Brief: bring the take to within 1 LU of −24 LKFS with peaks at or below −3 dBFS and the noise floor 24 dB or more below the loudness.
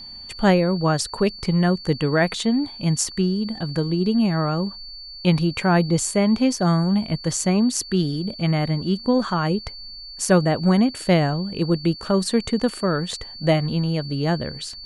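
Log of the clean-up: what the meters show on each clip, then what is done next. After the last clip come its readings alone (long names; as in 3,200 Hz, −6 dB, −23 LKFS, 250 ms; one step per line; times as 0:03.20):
interfering tone 4,500 Hz; level of the tone −36 dBFS; integrated loudness −21.5 LKFS; sample peak −5.0 dBFS; target loudness −24.0 LKFS
→ notch filter 4,500 Hz, Q 30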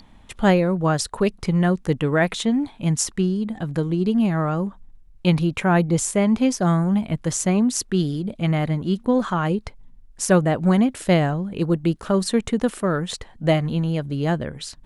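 interfering tone none found; integrated loudness −21.5 LKFS; sample peak −5.0 dBFS; target loudness −24.0 LKFS
→ level −2.5 dB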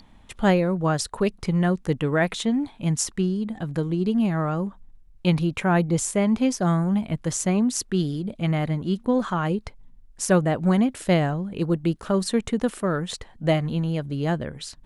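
integrated loudness −24.0 LKFS; sample peak −7.5 dBFS; background noise floor −51 dBFS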